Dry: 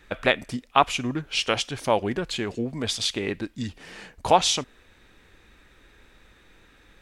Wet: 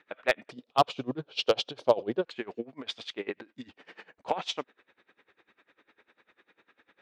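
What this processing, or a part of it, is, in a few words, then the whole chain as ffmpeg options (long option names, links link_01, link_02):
helicopter radio: -filter_complex "[0:a]highpass=330,lowpass=2800,aeval=exprs='val(0)*pow(10,-24*(0.5-0.5*cos(2*PI*10*n/s))/20)':channel_layout=same,asoftclip=type=hard:threshold=-13.5dB,asettb=1/sr,asplit=3[link_01][link_02][link_03];[link_01]atrim=end=0.514[link_04];[link_02]atrim=start=0.51:end=2.25,asetpts=PTS-STARTPTS,afade=type=in:duration=0.004:curve=qsin,afade=type=out:start_time=1.736:duration=0.004:curve=qsin,equalizer=frequency=125:width_type=o:width=1:gain=12,equalizer=frequency=500:width_type=o:width=1:gain=8,equalizer=frequency=2000:width_type=o:width=1:gain=-11,equalizer=frequency=4000:width_type=o:width=1:gain=10[link_05];[link_03]atrim=start=2.246[link_06];[link_04][link_05]acrossfade=duration=0.004:curve1=hsin:curve2=qsin[link_07];[link_07][link_06]acrossfade=duration=0.004:curve1=qsin:curve2=hsin"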